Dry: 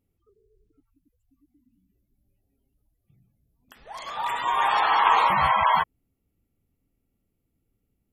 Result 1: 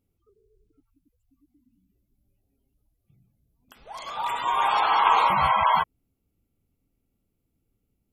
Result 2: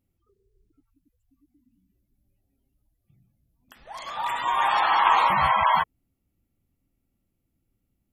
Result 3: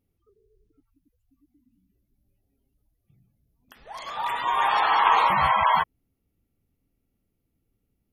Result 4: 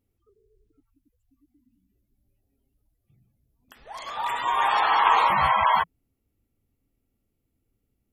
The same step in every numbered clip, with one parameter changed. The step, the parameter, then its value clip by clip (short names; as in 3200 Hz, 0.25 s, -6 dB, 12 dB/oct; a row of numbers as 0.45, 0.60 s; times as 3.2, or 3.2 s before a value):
notch, frequency: 1800, 440, 7600, 170 Hz